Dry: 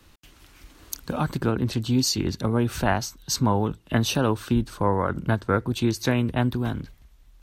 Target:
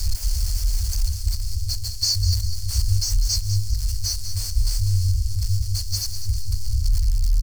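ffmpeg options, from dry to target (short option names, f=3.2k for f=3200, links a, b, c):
-filter_complex "[0:a]aeval=exprs='val(0)+0.5*0.0841*sgn(val(0))':c=same,afftfilt=real='re*(1-between(b*sr/4096,100,4200))':imag='im*(1-between(b*sr/4096,100,4200))':win_size=4096:overlap=0.75,adynamicequalizer=threshold=0.00708:dfrequency=2800:dqfactor=0.86:tfrequency=2800:tqfactor=0.86:attack=5:release=100:ratio=0.375:range=3.5:mode=cutabove:tftype=bell,acrossover=split=5400[a][b];[b]asoftclip=type=tanh:threshold=-39dB[c];[a][c]amix=inputs=2:normalize=0,lowshelf=f=64:g=7.5,asplit=2[d][e];[e]aecho=0:1:199|398|597|796:0.316|0.133|0.0558|0.0234[f];[d][f]amix=inputs=2:normalize=0,volume=5.5dB"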